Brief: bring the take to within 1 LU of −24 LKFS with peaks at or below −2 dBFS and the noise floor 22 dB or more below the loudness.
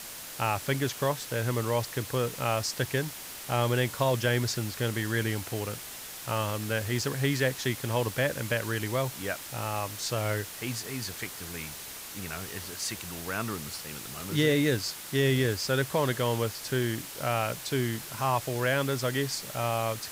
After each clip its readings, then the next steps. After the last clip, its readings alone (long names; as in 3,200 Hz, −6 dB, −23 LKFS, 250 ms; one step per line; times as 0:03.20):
background noise floor −42 dBFS; target noise floor −52 dBFS; integrated loudness −30.0 LKFS; sample peak −12.0 dBFS; target loudness −24.0 LKFS
→ broadband denoise 10 dB, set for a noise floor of −42 dBFS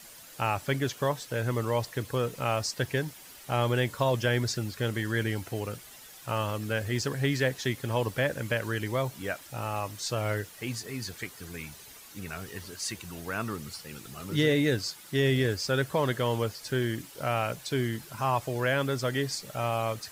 background noise floor −49 dBFS; target noise floor −52 dBFS
→ broadband denoise 6 dB, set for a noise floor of −49 dBFS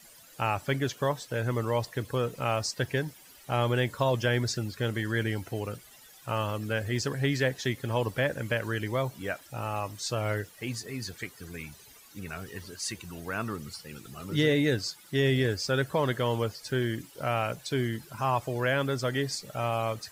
background noise floor −54 dBFS; integrated loudness −30.5 LKFS; sample peak −12.5 dBFS; target loudness −24.0 LKFS
→ level +6.5 dB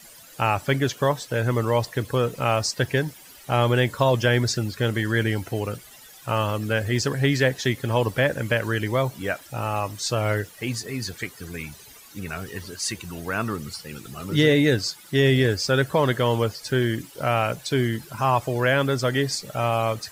integrated loudness −24.0 LKFS; sample peak −6.0 dBFS; background noise floor −47 dBFS